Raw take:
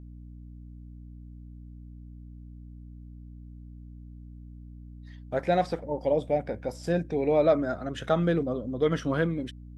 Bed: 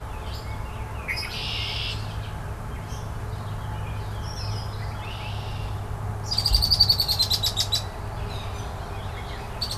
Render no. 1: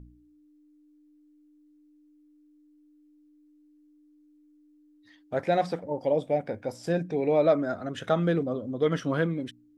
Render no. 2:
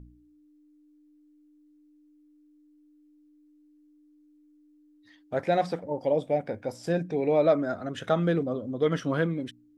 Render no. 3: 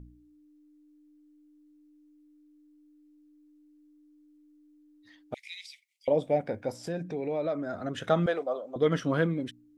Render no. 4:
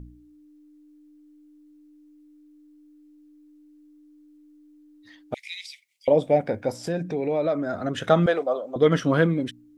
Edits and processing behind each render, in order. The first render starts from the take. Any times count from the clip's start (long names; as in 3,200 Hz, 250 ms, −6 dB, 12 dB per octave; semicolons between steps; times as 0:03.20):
hum removal 60 Hz, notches 4
no processing that can be heard
0:05.34–0:06.08: Butterworth high-pass 2,100 Hz 96 dB per octave; 0:06.83–0:07.74: downward compressor 2 to 1, threshold −34 dBFS; 0:08.26–0:08.76: high-pass with resonance 680 Hz, resonance Q 2.1
level +6.5 dB